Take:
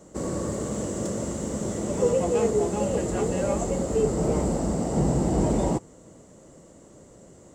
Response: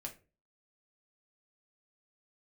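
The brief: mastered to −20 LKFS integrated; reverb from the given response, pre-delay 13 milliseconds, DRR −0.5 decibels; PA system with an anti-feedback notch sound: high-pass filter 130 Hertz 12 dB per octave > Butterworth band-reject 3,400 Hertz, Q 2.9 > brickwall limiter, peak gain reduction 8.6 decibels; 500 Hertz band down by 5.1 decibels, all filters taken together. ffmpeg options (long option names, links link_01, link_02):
-filter_complex "[0:a]equalizer=frequency=500:width_type=o:gain=-6,asplit=2[link_01][link_02];[1:a]atrim=start_sample=2205,adelay=13[link_03];[link_02][link_03]afir=irnorm=-1:irlink=0,volume=3dB[link_04];[link_01][link_04]amix=inputs=2:normalize=0,highpass=130,asuperstop=centerf=3400:order=8:qfactor=2.9,volume=8dB,alimiter=limit=-10.5dB:level=0:latency=1"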